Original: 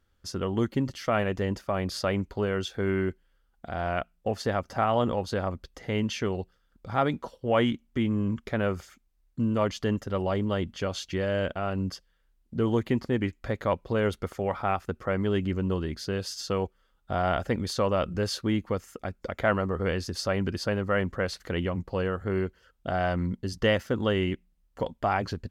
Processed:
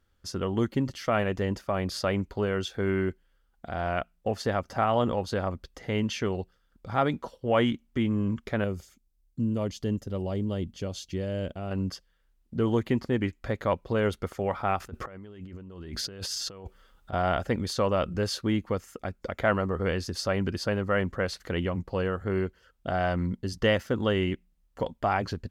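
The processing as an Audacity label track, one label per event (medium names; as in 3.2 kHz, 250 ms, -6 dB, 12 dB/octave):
8.640000	11.710000	peaking EQ 1.4 kHz -13 dB 2.3 oct
14.800000	17.130000	compressor with a negative ratio -40 dBFS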